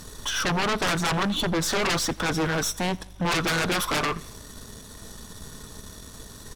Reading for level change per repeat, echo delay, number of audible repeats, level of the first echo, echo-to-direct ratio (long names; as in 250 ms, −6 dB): −5.0 dB, 87 ms, 3, −24.0 dB, −22.5 dB